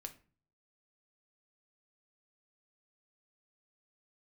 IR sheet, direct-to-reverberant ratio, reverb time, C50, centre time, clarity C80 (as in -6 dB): 5.5 dB, 0.40 s, 15.0 dB, 6 ms, 20.5 dB